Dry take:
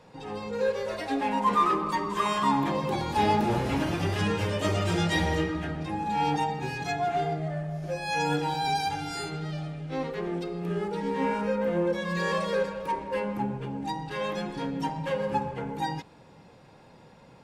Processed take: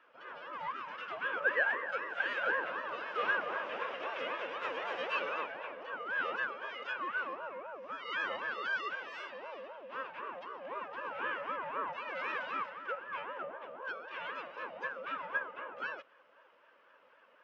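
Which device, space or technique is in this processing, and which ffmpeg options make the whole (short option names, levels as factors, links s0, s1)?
voice changer toy: -af "aeval=exprs='val(0)*sin(2*PI*580*n/s+580*0.4/3.9*sin(2*PI*3.9*n/s))':c=same,highpass=520,equalizer=f=530:t=q:w=4:g=7,equalizer=f=770:t=q:w=4:g=-7,equalizer=f=1100:t=q:w=4:g=4,equalizer=f=1600:t=q:w=4:g=8,equalizer=f=2700:t=q:w=4:g=8,equalizer=f=4200:t=q:w=4:g=-10,lowpass=f=4300:w=0.5412,lowpass=f=4300:w=1.3066,volume=0.376"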